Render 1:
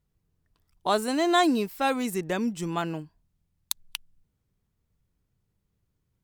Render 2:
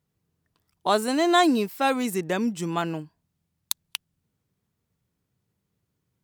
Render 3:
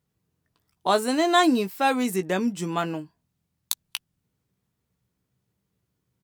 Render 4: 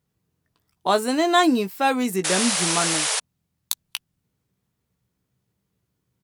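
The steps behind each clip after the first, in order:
high-pass 110 Hz 12 dB/octave; trim +2.5 dB
doubling 16 ms -10 dB
painted sound noise, 2.24–3.20 s, 420–11000 Hz -25 dBFS; trim +1.5 dB

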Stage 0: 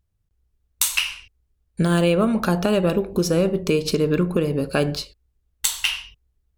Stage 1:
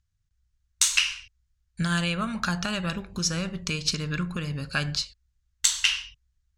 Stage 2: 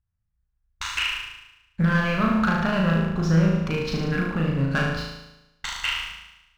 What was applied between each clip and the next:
FFT filter 140 Hz 0 dB, 420 Hz -18 dB, 1.6 kHz +5 dB, 2.5 kHz +2 dB, 6.7 kHz +8 dB, 14 kHz -15 dB; trim -3.5 dB
low-pass 1.5 kHz 12 dB/octave; waveshaping leveller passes 2; on a send: flutter echo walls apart 6.3 m, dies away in 0.94 s

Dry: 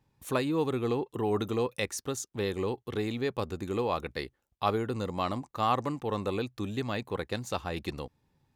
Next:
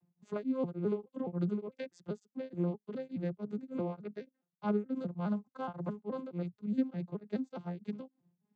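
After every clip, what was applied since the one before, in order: vocoder on a broken chord minor triad, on F3, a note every 210 ms; bass shelf 250 Hz +12 dB; tremolo of two beating tones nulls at 3.4 Hz; trim -6 dB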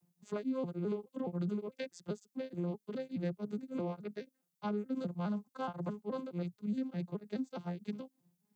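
treble shelf 4 kHz +12 dB; peak limiter -28 dBFS, peak gain reduction 8.5 dB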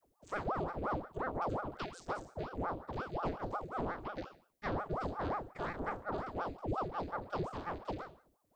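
spectral sustain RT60 0.47 s; ring modulator with a swept carrier 570 Hz, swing 85%, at 5.6 Hz; trim +1.5 dB

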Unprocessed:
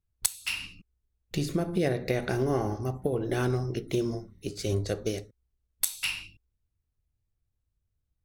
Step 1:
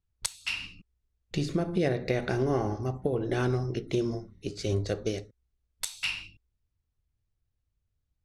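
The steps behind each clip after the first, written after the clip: low-pass 6.6 kHz 12 dB/octave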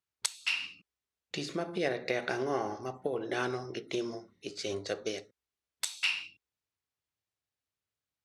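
frequency weighting A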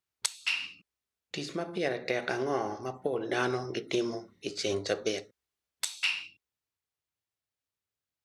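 gain riding 2 s; trim +2 dB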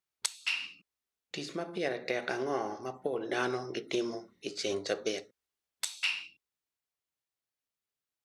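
peaking EQ 89 Hz -9 dB 0.99 oct; trim -2 dB

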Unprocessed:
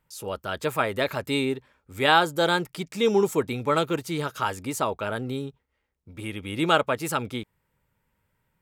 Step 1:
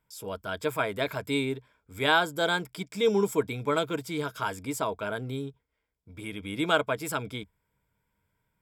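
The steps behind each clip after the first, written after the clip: rippled EQ curve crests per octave 1.7, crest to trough 8 dB; trim -4.5 dB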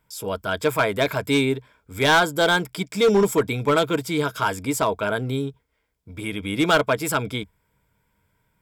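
hard clipper -21 dBFS, distortion -13 dB; trim +8.5 dB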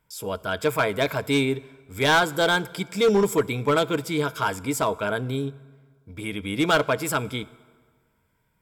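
reverberation RT60 1.7 s, pre-delay 3 ms, DRR 18.5 dB; trim -2 dB

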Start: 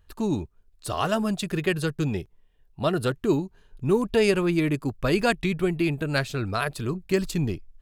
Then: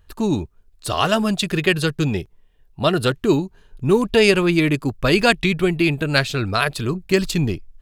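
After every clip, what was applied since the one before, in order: dynamic bell 3.4 kHz, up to +6 dB, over -43 dBFS, Q 0.77; trim +5.5 dB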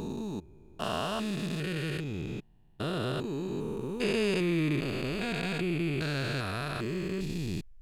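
spectrogram pixelated in time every 400 ms; trim -8 dB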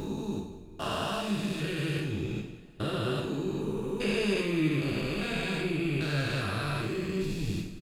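in parallel at +1 dB: compression, threshold -37 dBFS, peak gain reduction 12 dB; on the sum: delay 183 ms -15 dB; two-slope reverb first 0.56 s, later 3.3 s, from -22 dB, DRR -2 dB; trim -6 dB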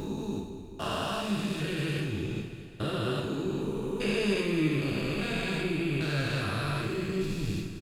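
feedback delay 216 ms, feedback 60%, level -12.5 dB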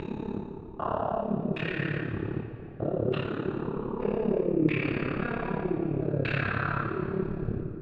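AM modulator 35 Hz, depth 80%; LFO low-pass saw down 0.64 Hz 480–2500 Hz; plate-style reverb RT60 2.6 s, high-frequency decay 0.85×, DRR 9 dB; trim +3 dB

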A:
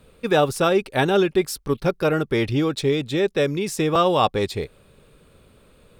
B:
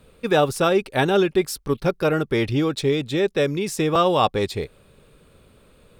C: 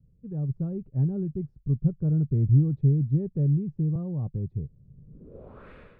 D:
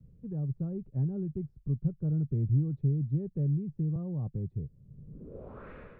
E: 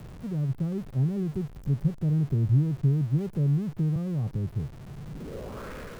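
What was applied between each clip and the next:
no audible change
level rider gain up to 14 dB; low-pass sweep 140 Hz -> 1.9 kHz, 5.05–5.69 s; trim -8 dB
three bands compressed up and down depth 40%; trim -5.5 dB
jump at every zero crossing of -44 dBFS; trim +4 dB

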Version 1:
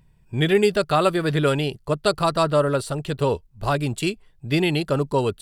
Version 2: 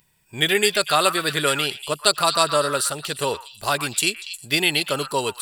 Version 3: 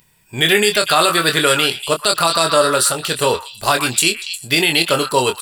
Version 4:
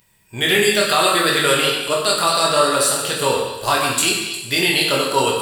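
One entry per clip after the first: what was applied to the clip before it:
tilt EQ +4 dB/octave; repeats whose band climbs or falls 119 ms, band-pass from 1.5 kHz, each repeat 1.4 oct, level -6.5 dB; trim +1 dB
doubling 24 ms -7 dB; loudness maximiser +8 dB; trim -1 dB
plate-style reverb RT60 1.1 s, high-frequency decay 0.85×, DRR -1.5 dB; trim -5 dB

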